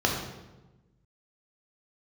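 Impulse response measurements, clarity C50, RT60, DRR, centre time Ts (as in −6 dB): 3.0 dB, 1.1 s, −1.0 dB, 46 ms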